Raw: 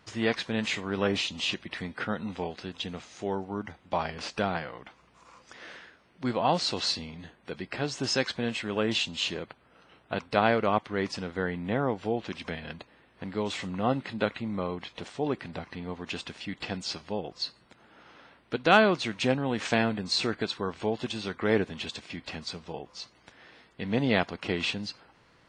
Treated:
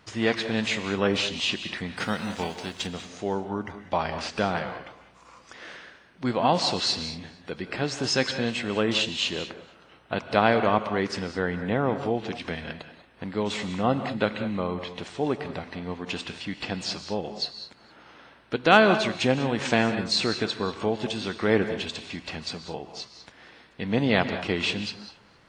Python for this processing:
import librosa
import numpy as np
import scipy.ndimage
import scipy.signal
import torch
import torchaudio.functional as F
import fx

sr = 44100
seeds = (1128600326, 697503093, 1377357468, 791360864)

y = fx.envelope_flatten(x, sr, power=0.6, at=(1.96, 2.86), fade=0.02)
y = fx.echo_feedback(y, sr, ms=232, feedback_pct=28, wet_db=-22.0)
y = fx.rev_gated(y, sr, seeds[0], gate_ms=220, shape='rising', drr_db=9.5)
y = F.gain(torch.from_numpy(y), 3.0).numpy()